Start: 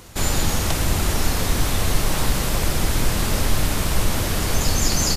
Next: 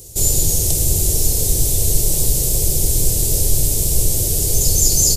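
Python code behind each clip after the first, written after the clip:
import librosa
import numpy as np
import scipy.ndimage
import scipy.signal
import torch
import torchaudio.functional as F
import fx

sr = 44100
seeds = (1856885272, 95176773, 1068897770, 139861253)

y = fx.curve_eq(x, sr, hz=(150.0, 220.0, 410.0, 660.0, 1300.0, 7600.0), db=(0, -13, 1, -9, -28, 9))
y = F.gain(torch.from_numpy(y), 3.0).numpy()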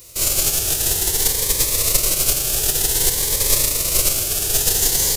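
y = fx.envelope_flatten(x, sr, power=0.3)
y = fx.notch_cascade(y, sr, direction='rising', hz=0.53)
y = F.gain(torch.from_numpy(y), -4.5).numpy()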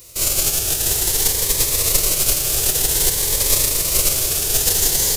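y = x + 10.0 ** (-8.0 / 20.0) * np.pad(x, (int(715 * sr / 1000.0), 0))[:len(x)]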